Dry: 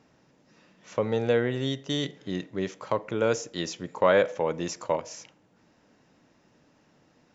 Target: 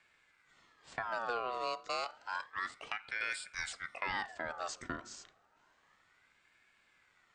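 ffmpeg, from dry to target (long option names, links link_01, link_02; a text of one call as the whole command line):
ffmpeg -i in.wav -filter_complex "[0:a]acrossover=split=270|3000[link_01][link_02][link_03];[link_02]acompressor=threshold=-32dB:ratio=4[link_04];[link_01][link_04][link_03]amix=inputs=3:normalize=0,aeval=exprs='val(0)*sin(2*PI*1400*n/s+1400*0.4/0.3*sin(2*PI*0.3*n/s))':channel_layout=same,volume=-4.5dB" out.wav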